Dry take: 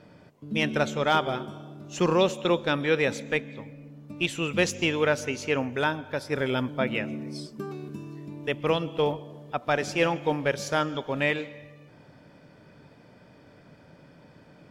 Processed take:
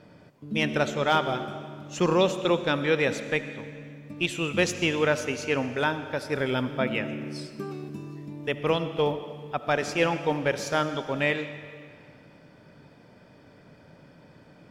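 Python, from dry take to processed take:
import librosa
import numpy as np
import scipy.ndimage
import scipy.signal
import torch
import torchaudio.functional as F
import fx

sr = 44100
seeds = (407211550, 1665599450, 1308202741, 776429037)

y = fx.rev_freeverb(x, sr, rt60_s=2.1, hf_ratio=0.95, predelay_ms=35, drr_db=11.5)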